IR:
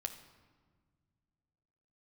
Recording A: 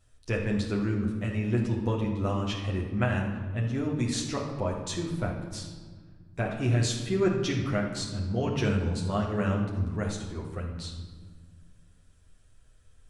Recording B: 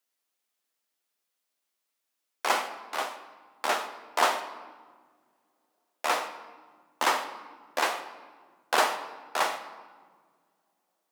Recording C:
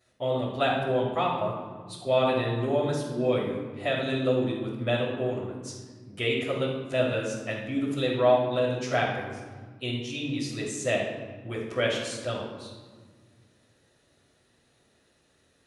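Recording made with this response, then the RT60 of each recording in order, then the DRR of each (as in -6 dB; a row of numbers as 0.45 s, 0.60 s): B; 1.5 s, 1.6 s, 1.5 s; -3.0 dB, 5.5 dB, -10.5 dB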